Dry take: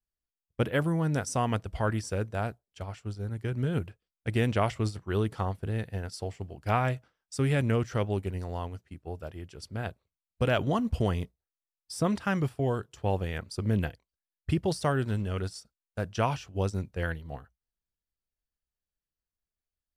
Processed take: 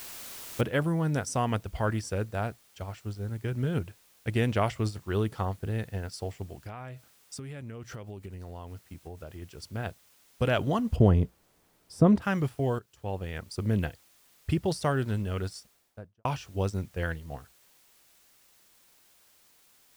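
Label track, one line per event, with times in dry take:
0.610000	0.610000	noise floor change −43 dB −62 dB
6.610000	9.420000	downward compressor 16 to 1, threshold −36 dBFS
10.960000	12.220000	tilt shelving filter lows +8.5 dB, about 1,100 Hz
12.790000	13.590000	fade in, from −14.5 dB
15.530000	16.250000	fade out and dull

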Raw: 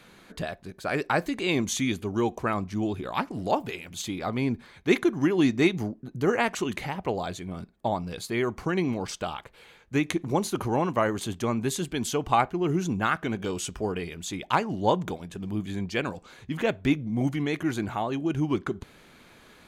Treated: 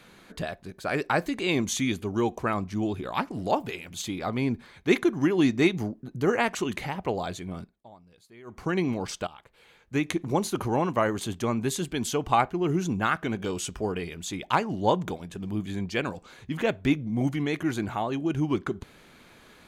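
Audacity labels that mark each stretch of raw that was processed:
7.570000	8.700000	duck −22.5 dB, fades 0.26 s
9.270000	10.440000	fade in equal-power, from −16.5 dB

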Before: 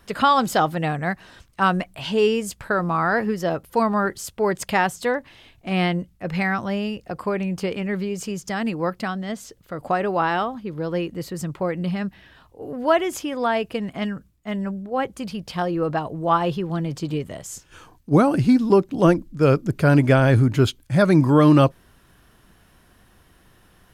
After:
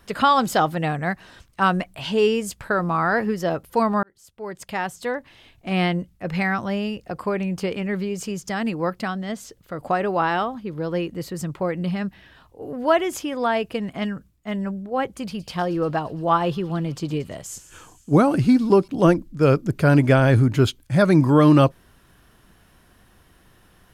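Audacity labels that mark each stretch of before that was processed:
4.030000	5.690000	fade in
15.040000	18.880000	delay with a high-pass on its return 115 ms, feedback 73%, high-pass 3,900 Hz, level −14 dB

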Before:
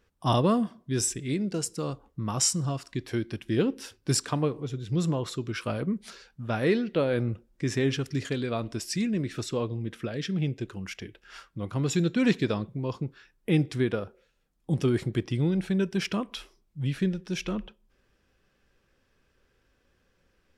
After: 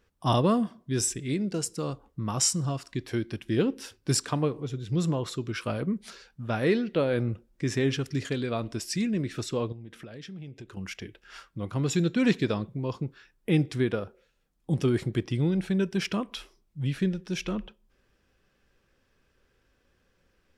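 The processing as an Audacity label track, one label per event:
9.720000	10.770000	downward compressor 4 to 1, threshold −41 dBFS

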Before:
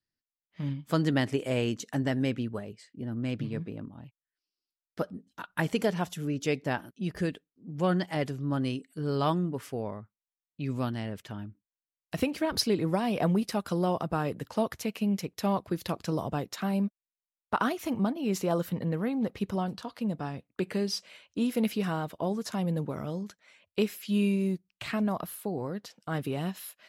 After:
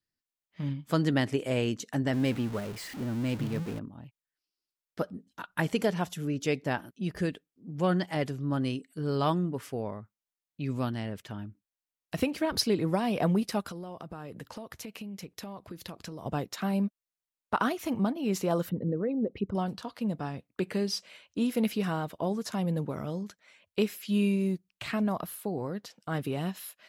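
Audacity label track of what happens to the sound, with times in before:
2.130000	3.790000	converter with a step at zero of −37 dBFS
13.710000	16.260000	downward compressor 10 to 1, threshold −37 dBFS
18.690000	19.550000	spectral envelope exaggerated exponent 2

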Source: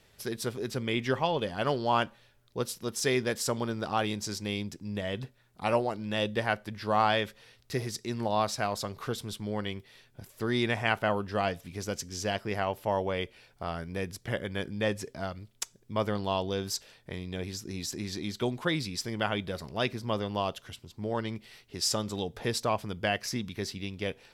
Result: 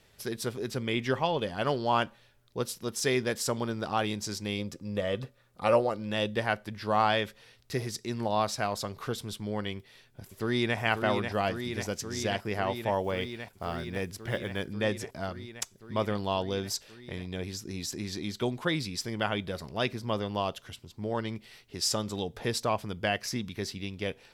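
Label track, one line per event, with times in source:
4.580000	6.100000	hollow resonant body resonances 530/1,200 Hz, height 13 dB → 9 dB
9.770000	10.780000	delay throw 540 ms, feedback 85%, level −6 dB
13.020000	14.670000	one scale factor per block 7 bits

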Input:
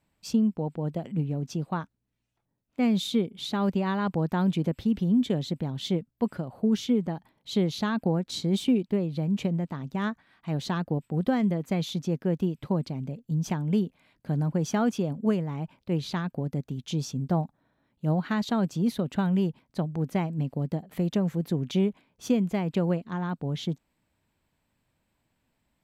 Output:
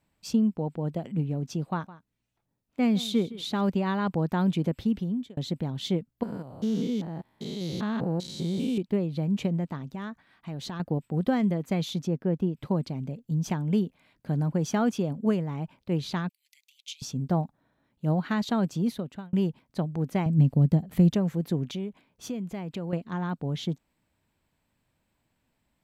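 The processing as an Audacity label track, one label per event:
1.660000	3.610000	single-tap delay 162 ms −17.5 dB
4.850000	5.370000	fade out
6.230000	8.780000	spectrum averaged block by block every 200 ms
9.770000	10.800000	downward compressor 4 to 1, threshold −33 dBFS
12.070000	12.570000	high-shelf EQ 2,400 Hz −10.5 dB
16.290000	17.020000	Butterworth high-pass 2,100 Hz 72 dB per octave
18.770000	19.330000	fade out
20.260000	21.150000	bass and treble bass +11 dB, treble +3 dB
21.650000	22.930000	downward compressor 2 to 1, threshold −37 dBFS

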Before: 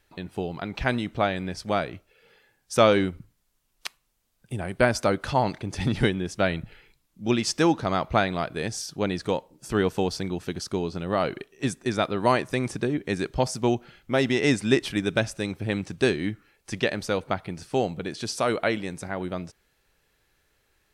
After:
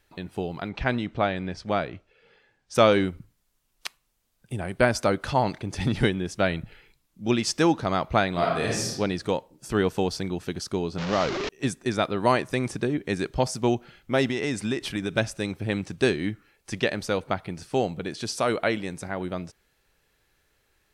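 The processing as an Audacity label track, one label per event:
0.690000	2.750000	high-frequency loss of the air 91 metres
8.320000	8.910000	thrown reverb, RT60 0.91 s, DRR −3 dB
10.980000	11.490000	linear delta modulator 32 kbit/s, step −23 dBFS
14.290000	15.180000	downward compressor 4 to 1, threshold −23 dBFS

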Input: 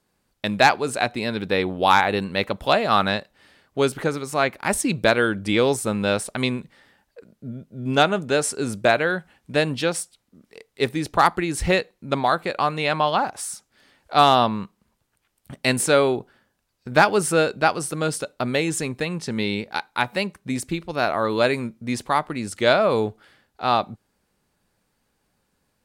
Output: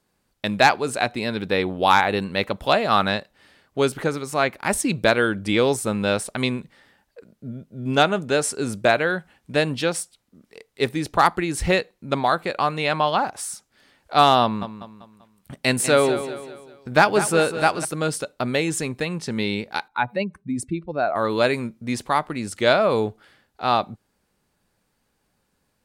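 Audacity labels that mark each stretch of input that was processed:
14.420000	17.850000	repeating echo 195 ms, feedback 42%, level −11 dB
19.880000	21.160000	expanding power law on the bin magnitudes exponent 1.7

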